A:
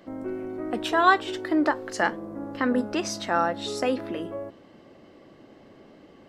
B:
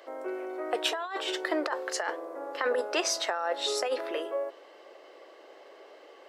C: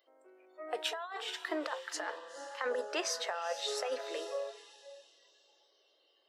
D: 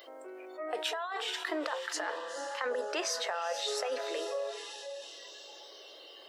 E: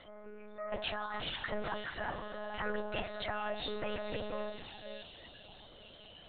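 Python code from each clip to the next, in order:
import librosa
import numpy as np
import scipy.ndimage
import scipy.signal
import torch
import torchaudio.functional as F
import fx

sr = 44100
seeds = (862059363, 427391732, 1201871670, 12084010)

y1 = scipy.signal.sosfilt(scipy.signal.butter(6, 410.0, 'highpass', fs=sr, output='sos'), x)
y1 = fx.over_compress(y1, sr, threshold_db=-29.0, ratio=-1.0)
y2 = fx.echo_diffused(y1, sr, ms=475, feedback_pct=43, wet_db=-11.0)
y2 = fx.noise_reduce_blind(y2, sr, reduce_db=19)
y2 = F.gain(torch.from_numpy(y2), -6.5).numpy()
y3 = fx.env_flatten(y2, sr, amount_pct=50)
y4 = fx.lpc_monotone(y3, sr, seeds[0], pitch_hz=210.0, order=10)
y4 = F.gain(torch.from_numpy(y4), -2.5).numpy()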